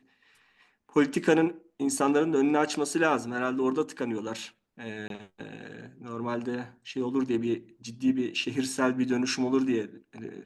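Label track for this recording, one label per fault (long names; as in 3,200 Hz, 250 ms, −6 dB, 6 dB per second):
5.080000	5.100000	drop-out 22 ms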